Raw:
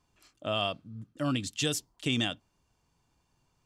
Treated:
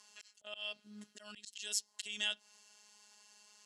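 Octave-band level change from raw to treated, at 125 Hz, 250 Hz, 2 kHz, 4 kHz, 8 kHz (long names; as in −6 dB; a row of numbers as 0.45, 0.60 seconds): below −30 dB, −23.5 dB, −7.0 dB, −6.5 dB, −3.0 dB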